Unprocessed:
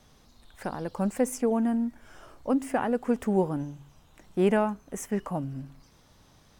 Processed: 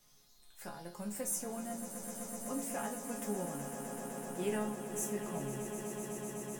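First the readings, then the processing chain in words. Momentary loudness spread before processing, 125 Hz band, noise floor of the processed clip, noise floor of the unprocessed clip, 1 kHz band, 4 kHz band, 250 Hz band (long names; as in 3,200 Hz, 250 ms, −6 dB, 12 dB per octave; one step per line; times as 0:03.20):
13 LU, −10.5 dB, −63 dBFS, −59 dBFS, −10.0 dB, −3.0 dB, −12.5 dB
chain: first-order pre-emphasis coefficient 0.8
resonators tuned to a chord C#3 major, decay 0.27 s
echo that builds up and dies away 126 ms, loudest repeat 8, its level −12 dB
level +14.5 dB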